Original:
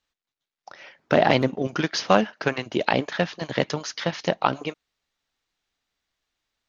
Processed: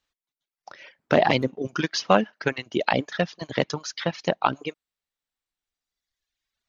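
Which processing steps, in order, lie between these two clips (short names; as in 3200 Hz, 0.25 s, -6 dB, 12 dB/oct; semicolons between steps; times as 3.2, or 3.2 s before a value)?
reverb removal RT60 1.8 s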